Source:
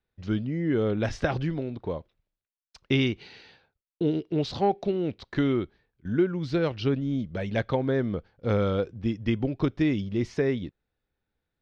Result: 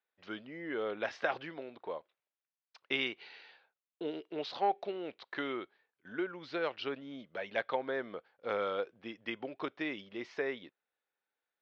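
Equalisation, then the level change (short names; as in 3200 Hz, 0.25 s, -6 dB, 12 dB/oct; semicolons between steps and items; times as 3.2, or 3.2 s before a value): BPF 660–3900 Hz; air absorption 52 m; -1.5 dB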